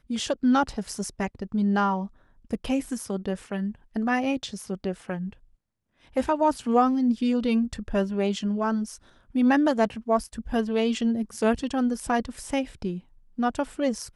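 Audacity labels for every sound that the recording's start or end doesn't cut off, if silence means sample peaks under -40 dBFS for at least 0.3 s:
2.510000	5.330000	sound
6.160000	8.960000	sound
9.350000	13.000000	sound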